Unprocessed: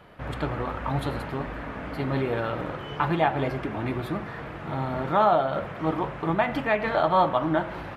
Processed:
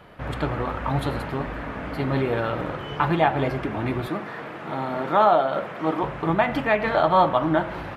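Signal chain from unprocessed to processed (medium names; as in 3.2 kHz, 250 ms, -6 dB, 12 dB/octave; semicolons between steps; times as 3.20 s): 4.08–6.03 s: high-pass 210 Hz 12 dB/octave; trim +3 dB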